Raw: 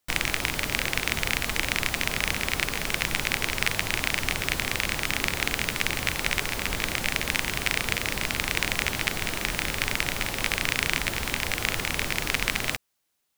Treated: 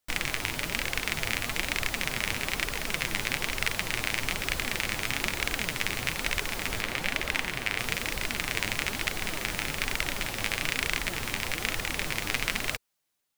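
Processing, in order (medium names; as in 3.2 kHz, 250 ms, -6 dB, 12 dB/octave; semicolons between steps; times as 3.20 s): 6.81–7.79 s: tone controls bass -3 dB, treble -6 dB; level rider gain up to 3.5 dB; flange 1.1 Hz, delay 1.3 ms, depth 9.1 ms, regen +46%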